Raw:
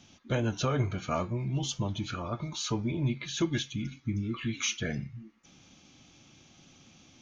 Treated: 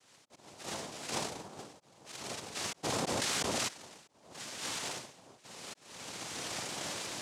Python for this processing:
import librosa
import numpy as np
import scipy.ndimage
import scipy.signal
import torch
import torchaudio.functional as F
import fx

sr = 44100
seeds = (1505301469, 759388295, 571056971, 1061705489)

y = fx.delta_mod(x, sr, bps=16000, step_db=-30.5, at=(4.32, 4.95))
y = fx.recorder_agc(y, sr, target_db=-23.5, rise_db_per_s=26.0, max_gain_db=30)
y = fx.steep_lowpass(y, sr, hz=1200.0, slope=36, at=(1.11, 2.02))
y = fx.rev_schroeder(y, sr, rt60_s=0.56, comb_ms=33, drr_db=0.0)
y = np.repeat(y[::8], 8)[:len(y)]
y = fx.auto_swell(y, sr, attack_ms=679.0)
y = scipy.signal.sosfilt(scipy.signal.butter(2, 530.0, 'highpass', fs=sr, output='sos'), y)
y = fx.noise_vocoder(y, sr, seeds[0], bands=2)
y = fx.env_flatten(y, sr, amount_pct=100, at=(2.83, 3.67), fade=0.02)
y = F.gain(torch.from_numpy(y), -5.0).numpy()